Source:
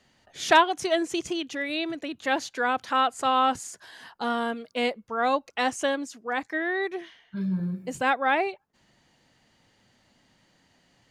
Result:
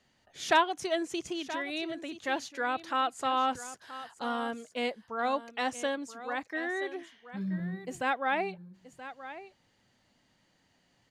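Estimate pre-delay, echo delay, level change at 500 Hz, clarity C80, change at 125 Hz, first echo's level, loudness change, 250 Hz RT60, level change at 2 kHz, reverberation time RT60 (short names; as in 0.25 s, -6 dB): none, 0.977 s, -6.0 dB, none, -6.0 dB, -14.0 dB, -6.0 dB, none, -6.0 dB, none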